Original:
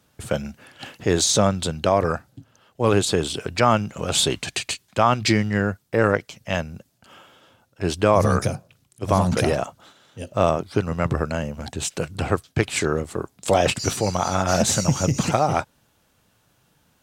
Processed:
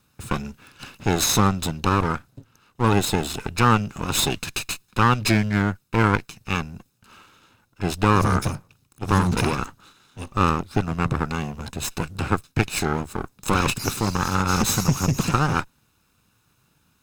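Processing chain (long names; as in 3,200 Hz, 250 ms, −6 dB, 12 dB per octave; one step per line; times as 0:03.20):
lower of the sound and its delayed copy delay 0.77 ms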